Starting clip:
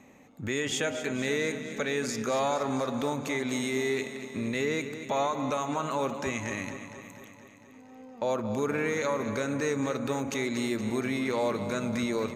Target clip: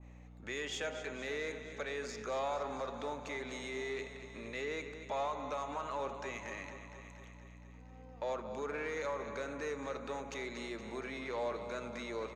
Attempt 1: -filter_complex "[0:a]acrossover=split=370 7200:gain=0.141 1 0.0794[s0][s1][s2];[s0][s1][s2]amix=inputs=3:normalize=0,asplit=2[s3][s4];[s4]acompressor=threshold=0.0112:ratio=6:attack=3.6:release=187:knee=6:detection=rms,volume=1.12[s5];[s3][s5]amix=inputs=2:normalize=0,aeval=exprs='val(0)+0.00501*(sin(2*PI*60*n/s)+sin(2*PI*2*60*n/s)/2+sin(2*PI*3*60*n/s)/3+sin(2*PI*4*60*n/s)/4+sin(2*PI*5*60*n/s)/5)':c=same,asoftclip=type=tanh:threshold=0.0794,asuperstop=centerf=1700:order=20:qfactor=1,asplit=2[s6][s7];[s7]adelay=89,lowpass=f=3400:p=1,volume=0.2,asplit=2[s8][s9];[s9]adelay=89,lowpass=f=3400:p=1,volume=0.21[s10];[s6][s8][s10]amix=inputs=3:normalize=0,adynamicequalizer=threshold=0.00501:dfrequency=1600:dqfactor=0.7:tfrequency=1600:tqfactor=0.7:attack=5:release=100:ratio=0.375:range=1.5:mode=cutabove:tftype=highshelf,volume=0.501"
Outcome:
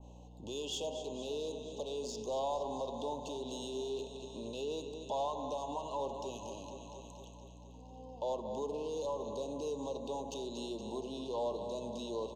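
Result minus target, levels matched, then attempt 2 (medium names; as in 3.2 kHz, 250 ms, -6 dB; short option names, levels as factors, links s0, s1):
2 kHz band -19.0 dB; compression: peak gain reduction +14 dB
-filter_complex "[0:a]acrossover=split=370 7200:gain=0.141 1 0.0794[s0][s1][s2];[s0][s1][s2]amix=inputs=3:normalize=0,aeval=exprs='val(0)+0.00501*(sin(2*PI*60*n/s)+sin(2*PI*2*60*n/s)/2+sin(2*PI*3*60*n/s)/3+sin(2*PI*4*60*n/s)/4+sin(2*PI*5*60*n/s)/5)':c=same,asoftclip=type=tanh:threshold=0.0794,asplit=2[s3][s4];[s4]adelay=89,lowpass=f=3400:p=1,volume=0.2,asplit=2[s5][s6];[s6]adelay=89,lowpass=f=3400:p=1,volume=0.21[s7];[s3][s5][s7]amix=inputs=3:normalize=0,adynamicequalizer=threshold=0.00501:dfrequency=1600:dqfactor=0.7:tfrequency=1600:tqfactor=0.7:attack=5:release=100:ratio=0.375:range=1.5:mode=cutabove:tftype=highshelf,volume=0.501"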